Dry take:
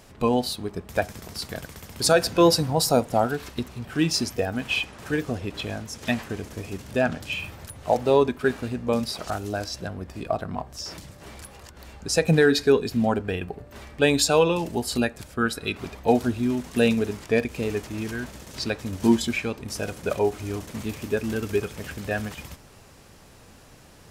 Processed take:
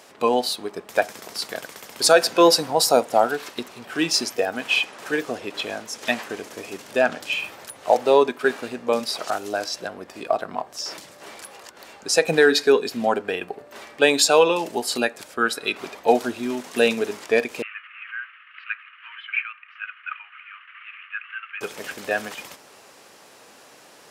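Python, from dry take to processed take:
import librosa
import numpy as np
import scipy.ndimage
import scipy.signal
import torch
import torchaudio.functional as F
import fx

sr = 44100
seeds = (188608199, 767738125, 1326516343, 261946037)

y = fx.cheby1_bandpass(x, sr, low_hz=1200.0, high_hz=2900.0, order=4, at=(17.62, 21.61))
y = scipy.signal.sosfilt(scipy.signal.butter(2, 400.0, 'highpass', fs=sr, output='sos'), y)
y = fx.high_shelf(y, sr, hz=11000.0, db=-4.0)
y = y * 10.0 ** (5.0 / 20.0)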